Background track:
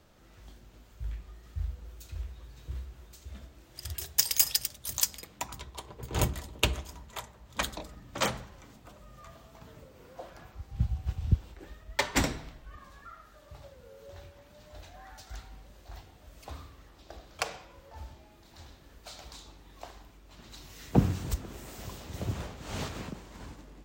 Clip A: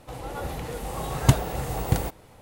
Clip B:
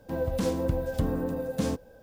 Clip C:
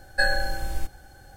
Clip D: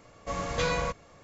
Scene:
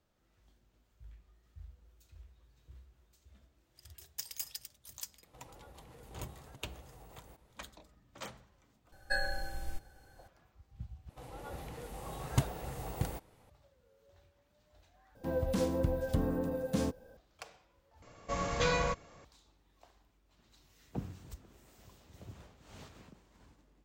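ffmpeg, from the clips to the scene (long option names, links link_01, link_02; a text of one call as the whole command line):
ffmpeg -i bed.wav -i cue0.wav -i cue1.wav -i cue2.wav -i cue3.wav -filter_complex "[1:a]asplit=2[link_01][link_02];[0:a]volume=-16.5dB[link_03];[link_01]acompressor=threshold=-35dB:ratio=6:attack=3.2:release=140:knee=1:detection=peak[link_04];[link_03]asplit=4[link_05][link_06][link_07][link_08];[link_05]atrim=end=11.094[link_09];[link_02]atrim=end=2.41,asetpts=PTS-STARTPTS,volume=-12dB[link_10];[link_06]atrim=start=13.496:end=15.154[link_11];[2:a]atrim=end=2.02,asetpts=PTS-STARTPTS,volume=-4dB[link_12];[link_07]atrim=start=17.166:end=18.024[link_13];[4:a]atrim=end=1.23,asetpts=PTS-STARTPTS,volume=-2dB[link_14];[link_08]atrim=start=19.246[link_15];[link_04]atrim=end=2.41,asetpts=PTS-STARTPTS,volume=-17dB,afade=type=in:duration=0.004:curve=hsin,afade=type=out:start_time=2.406:duration=0.004:curve=hsin,adelay=5260[link_16];[3:a]atrim=end=1.36,asetpts=PTS-STARTPTS,volume=-11dB,afade=type=in:duration=0.004:curve=hsin,afade=type=out:start_time=1.356:duration=0.004:curve=hsin,adelay=8920[link_17];[link_09][link_10]acrossfade=duration=0.004:curve1=hsin:curve2=hsin[link_18];[link_18][link_11]acrossfade=duration=0.004:curve1=hsin:curve2=hsin[link_19];[link_19][link_12]acrossfade=duration=0.004:curve1=hsin:curve2=hsin[link_20];[link_20][link_13]acrossfade=duration=0.004:curve1=hsin:curve2=hsin[link_21];[link_21][link_14]acrossfade=duration=0.004:curve1=hsin:curve2=hsin[link_22];[link_22][link_15]acrossfade=duration=0.004:curve1=hsin:curve2=hsin[link_23];[link_23][link_16][link_17]amix=inputs=3:normalize=0" out.wav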